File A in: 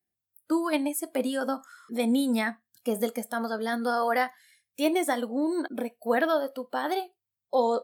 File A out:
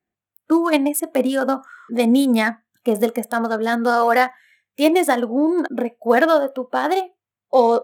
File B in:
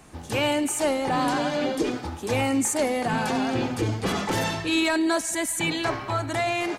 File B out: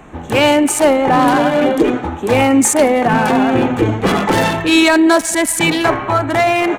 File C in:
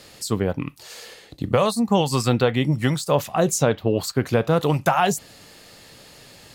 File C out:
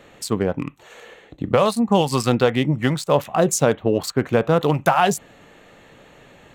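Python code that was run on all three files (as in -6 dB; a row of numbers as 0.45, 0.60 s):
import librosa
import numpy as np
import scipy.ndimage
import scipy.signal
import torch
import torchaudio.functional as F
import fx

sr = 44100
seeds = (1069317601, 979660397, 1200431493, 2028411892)

y = fx.wiener(x, sr, points=9)
y = fx.peak_eq(y, sr, hz=95.0, db=-5.5, octaves=1.2)
y = y * 10.0 ** (-2 / 20.0) / np.max(np.abs(y))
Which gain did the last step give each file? +10.0, +13.0, +2.5 dB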